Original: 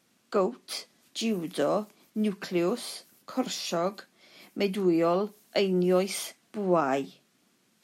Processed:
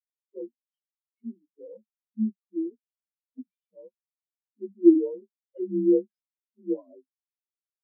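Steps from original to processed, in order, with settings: inharmonic rescaling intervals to 85%; spectral expander 4:1; gain +8 dB

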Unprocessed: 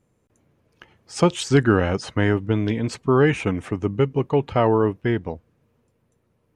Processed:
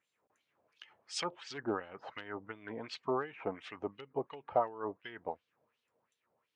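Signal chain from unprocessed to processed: treble ducked by the level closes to 910 Hz, closed at -15.5 dBFS; high shelf 4700 Hz +7.5 dB; in parallel at -1.5 dB: compressor 12:1, threshold -27 dBFS, peak gain reduction 16.5 dB; on the sum: overloaded stage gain 6 dB; wah 2.8 Hz 670–3700 Hz, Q 2.7; gain -4.5 dB

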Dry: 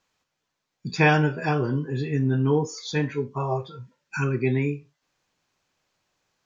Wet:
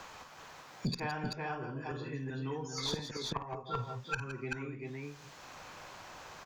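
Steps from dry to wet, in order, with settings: bell 960 Hz +9 dB 2 oct; flipped gate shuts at -20 dBFS, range -25 dB; tube stage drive 25 dB, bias 0.35; on a send: tapped delay 52/160/168/384 ms -9.5/-15/-14/-5.5 dB; on the sum: three-band squash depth 70%; gain +4 dB

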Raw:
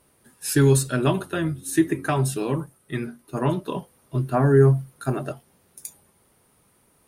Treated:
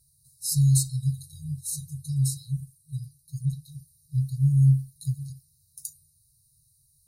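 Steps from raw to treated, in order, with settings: FFT band-reject 160–3800 Hz

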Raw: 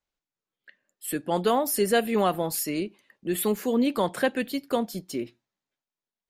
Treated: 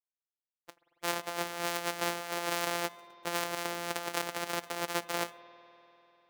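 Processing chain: sample sorter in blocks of 256 samples; HPF 510 Hz 12 dB/oct; expander -54 dBFS; negative-ratio compressor -37 dBFS, ratio -1; on a send: reverb RT60 3.5 s, pre-delay 80 ms, DRR 15 dB; on the sum: gain +2 dB

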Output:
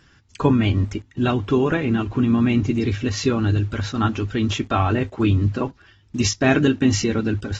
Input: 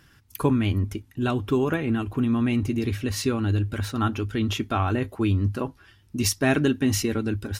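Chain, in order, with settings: in parallel at -11 dB: bit-crush 7-bit; on the sum: gain +1.5 dB; AAC 24 kbps 48000 Hz

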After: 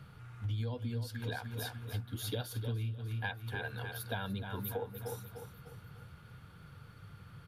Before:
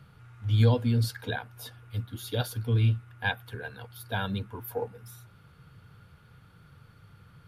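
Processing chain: feedback echo 0.299 s, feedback 41%, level -11 dB; compressor 10:1, threshold -35 dBFS, peak gain reduction 18 dB; gain +1 dB

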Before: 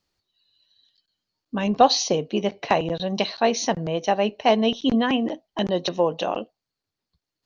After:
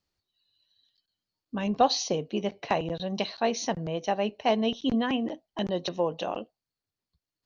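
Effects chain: bell 64 Hz +4 dB 2.5 oct; gain -6.5 dB

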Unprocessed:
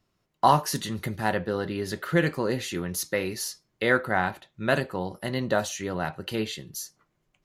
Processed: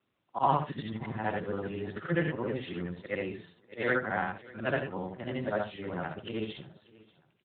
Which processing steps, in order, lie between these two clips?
short-time reversal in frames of 0.182 s; feedback echo 0.587 s, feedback 27%, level -22 dB; gain -2 dB; AMR-NB 10.2 kbps 8000 Hz

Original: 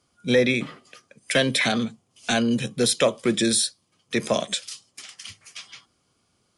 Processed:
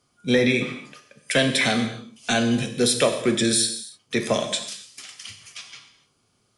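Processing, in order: non-linear reverb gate 0.32 s falling, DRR 5 dB

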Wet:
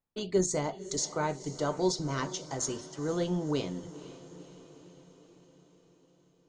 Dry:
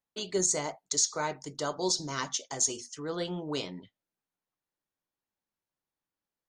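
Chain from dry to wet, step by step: tilt -2.5 dB/oct; diffused feedback echo 0.492 s, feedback 59%, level -15.5 dB

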